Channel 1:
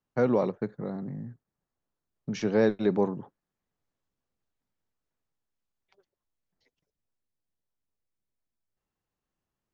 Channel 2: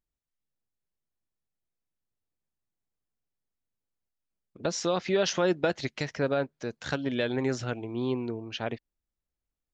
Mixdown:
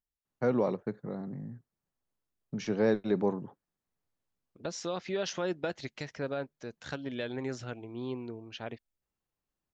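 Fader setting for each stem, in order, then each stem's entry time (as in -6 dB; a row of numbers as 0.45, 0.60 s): -3.5, -7.5 dB; 0.25, 0.00 s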